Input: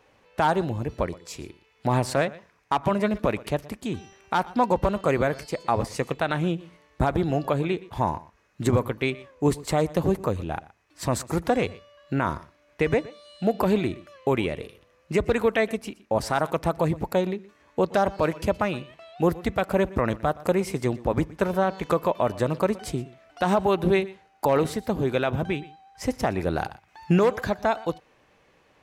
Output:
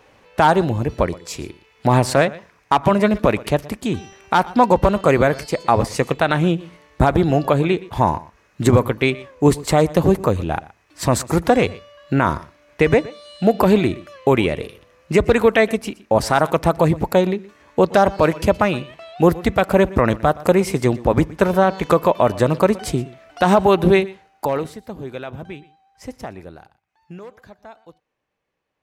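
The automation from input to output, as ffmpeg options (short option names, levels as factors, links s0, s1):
-af "volume=2.51,afade=t=out:st=23.86:d=0.65:silence=0.421697,afade=t=out:st=24.51:d=0.21:silence=0.446684,afade=t=out:st=26.22:d=0.4:silence=0.281838"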